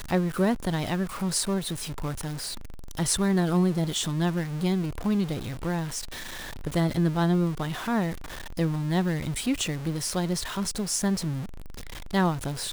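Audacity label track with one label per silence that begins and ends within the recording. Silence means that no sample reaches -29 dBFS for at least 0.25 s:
2.540000	2.910000	silence
6.000000	6.640000	silence
8.130000	8.590000	silence
11.420000	12.140000	silence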